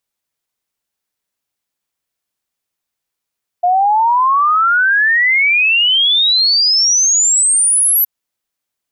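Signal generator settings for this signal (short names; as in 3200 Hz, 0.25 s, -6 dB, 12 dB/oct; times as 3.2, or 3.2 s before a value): log sweep 700 Hz -> 12000 Hz 4.42 s -9 dBFS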